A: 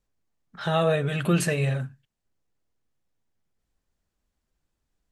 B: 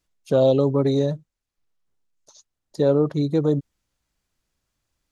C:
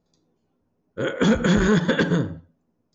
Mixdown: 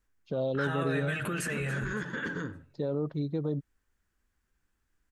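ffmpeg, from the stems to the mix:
-filter_complex "[0:a]acompressor=threshold=0.0631:ratio=6,volume=1.19,asplit=2[s0][s1];[s1]volume=0.0891[s2];[1:a]lowpass=f=4500:w=0.5412,lowpass=f=4500:w=1.3066,alimiter=limit=0.251:level=0:latency=1:release=38,volume=0.266[s3];[2:a]adelay=250,volume=0.299,afade=t=in:st=1.82:d=0.32:silence=0.421697[s4];[s0][s4]amix=inputs=2:normalize=0,equalizer=f=160:t=o:w=0.67:g=-11,equalizer=f=630:t=o:w=0.67:g=-9,equalizer=f=1600:t=o:w=0.67:g=8,equalizer=f=4000:t=o:w=0.67:g=-7,alimiter=level_in=1.26:limit=0.0631:level=0:latency=1:release=17,volume=0.794,volume=1[s5];[s2]aecho=0:1:281|562|843|1124|1405:1|0.35|0.122|0.0429|0.015[s6];[s3][s5][s6]amix=inputs=3:normalize=0,equalizer=f=170:w=1.5:g=3.5"

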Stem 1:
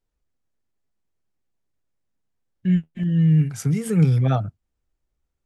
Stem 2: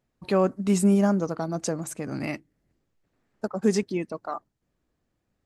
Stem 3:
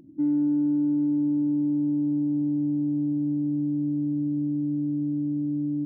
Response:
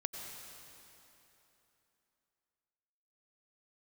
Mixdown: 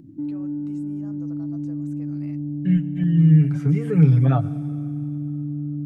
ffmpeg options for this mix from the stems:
-filter_complex "[0:a]aecho=1:1:7:0.65,volume=0.75,asplit=2[s0][s1];[s1]volume=0.2[s2];[1:a]alimiter=limit=0.075:level=0:latency=1:release=267,volume=0.266[s3];[2:a]equalizer=f=110:t=o:w=1.9:g=14,alimiter=limit=0.133:level=0:latency=1:release=402,volume=0.631,asplit=2[s4][s5];[s5]volume=0.531[s6];[s3][s4]amix=inputs=2:normalize=0,alimiter=level_in=1.68:limit=0.0631:level=0:latency=1,volume=0.596,volume=1[s7];[3:a]atrim=start_sample=2205[s8];[s2][s6]amix=inputs=2:normalize=0[s9];[s9][s8]afir=irnorm=-1:irlink=0[s10];[s0][s7][s10]amix=inputs=3:normalize=0,acrossover=split=2700[s11][s12];[s12]acompressor=threshold=0.00112:ratio=4:attack=1:release=60[s13];[s11][s13]amix=inputs=2:normalize=0"

